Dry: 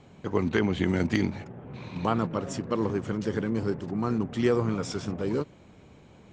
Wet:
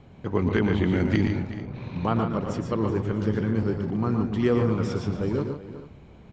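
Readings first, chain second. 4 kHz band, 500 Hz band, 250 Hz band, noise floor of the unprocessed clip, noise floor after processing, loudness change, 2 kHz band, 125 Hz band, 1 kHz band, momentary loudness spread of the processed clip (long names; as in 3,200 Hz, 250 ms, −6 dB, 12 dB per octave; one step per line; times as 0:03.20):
−1.0 dB, +2.0 dB, +3.0 dB, −53 dBFS, −49 dBFS, +2.5 dB, +1.0 dB, +5.5 dB, +1.0 dB, 10 LU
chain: Bessel low-pass filter 4,000 Hz, order 2
low-shelf EQ 96 Hz +11.5 dB
multi-tap delay 116/145/375/442 ms −7.5/−9/−14.5/−18 dB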